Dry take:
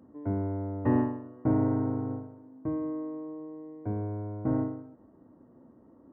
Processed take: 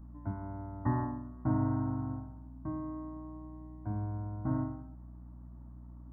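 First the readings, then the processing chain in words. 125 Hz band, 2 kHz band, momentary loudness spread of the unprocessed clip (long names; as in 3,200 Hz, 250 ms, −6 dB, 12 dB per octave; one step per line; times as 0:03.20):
−1.5 dB, can't be measured, 14 LU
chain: hum removal 49.17 Hz, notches 16
mains hum 60 Hz, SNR 15 dB
phaser with its sweep stopped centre 1,100 Hz, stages 4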